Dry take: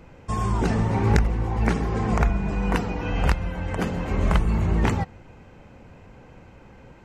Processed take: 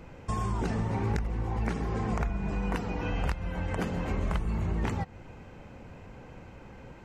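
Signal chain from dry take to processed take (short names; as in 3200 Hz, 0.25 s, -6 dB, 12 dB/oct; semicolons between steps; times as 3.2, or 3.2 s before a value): compressor 3:1, threshold -29 dBFS, peak gain reduction 12.5 dB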